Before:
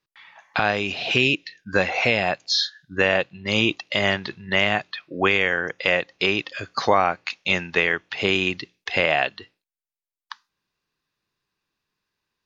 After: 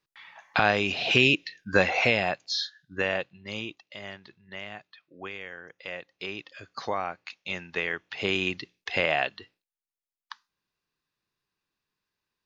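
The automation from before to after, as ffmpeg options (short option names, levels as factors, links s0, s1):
-af "volume=4.73,afade=t=out:st=1.88:d=0.63:silence=0.446684,afade=t=out:st=3.12:d=0.64:silence=0.266073,afade=t=in:st=5.64:d=1.19:silence=0.421697,afade=t=in:st=7.55:d=0.96:silence=0.446684"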